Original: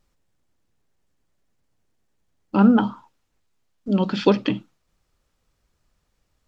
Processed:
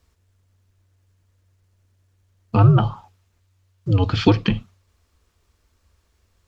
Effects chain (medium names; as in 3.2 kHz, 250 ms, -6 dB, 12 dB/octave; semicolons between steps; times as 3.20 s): band-stop 880 Hz, Q 12; in parallel at 0 dB: compression, threshold -25 dBFS, peak gain reduction 14 dB; on the sum: frequency shift -94 Hz